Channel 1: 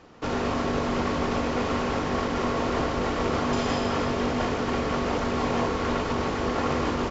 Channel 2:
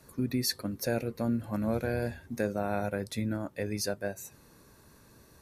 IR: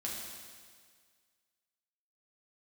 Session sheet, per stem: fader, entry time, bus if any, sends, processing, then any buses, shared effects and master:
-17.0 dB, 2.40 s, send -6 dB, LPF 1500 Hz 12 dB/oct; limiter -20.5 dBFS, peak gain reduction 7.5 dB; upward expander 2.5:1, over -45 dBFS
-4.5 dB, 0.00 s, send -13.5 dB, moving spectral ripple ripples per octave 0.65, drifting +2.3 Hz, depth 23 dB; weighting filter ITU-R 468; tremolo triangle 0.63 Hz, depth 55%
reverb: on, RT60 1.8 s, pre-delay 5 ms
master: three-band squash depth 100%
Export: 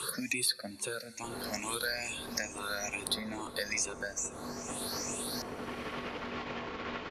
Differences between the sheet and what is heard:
stem 1: entry 2.40 s -> 1.00 s; reverb return -8.5 dB

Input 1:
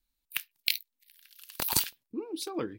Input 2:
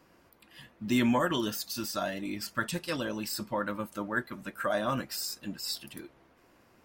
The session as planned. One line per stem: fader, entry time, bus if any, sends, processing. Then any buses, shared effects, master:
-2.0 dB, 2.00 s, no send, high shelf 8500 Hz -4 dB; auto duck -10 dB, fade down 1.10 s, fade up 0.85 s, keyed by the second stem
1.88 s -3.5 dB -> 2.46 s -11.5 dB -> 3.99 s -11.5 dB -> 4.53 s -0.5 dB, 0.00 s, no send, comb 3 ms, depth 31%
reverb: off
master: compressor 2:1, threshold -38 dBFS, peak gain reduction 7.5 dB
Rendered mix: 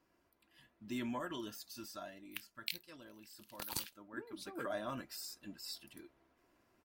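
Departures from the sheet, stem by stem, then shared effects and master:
stem 2 -3.5 dB -> -14.5 dB; master: missing compressor 2:1, threshold -38 dBFS, peak gain reduction 7.5 dB

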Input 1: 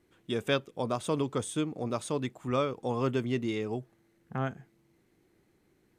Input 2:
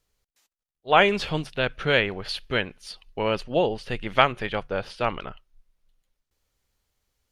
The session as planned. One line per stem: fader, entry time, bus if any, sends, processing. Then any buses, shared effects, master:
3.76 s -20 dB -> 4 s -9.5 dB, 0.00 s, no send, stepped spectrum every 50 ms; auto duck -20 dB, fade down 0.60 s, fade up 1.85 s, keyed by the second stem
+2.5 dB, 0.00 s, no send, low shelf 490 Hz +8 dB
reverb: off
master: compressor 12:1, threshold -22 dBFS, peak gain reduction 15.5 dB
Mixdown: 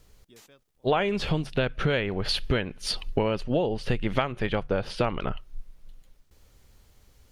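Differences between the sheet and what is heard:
stem 1: missing stepped spectrum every 50 ms; stem 2 +2.5 dB -> +12.5 dB

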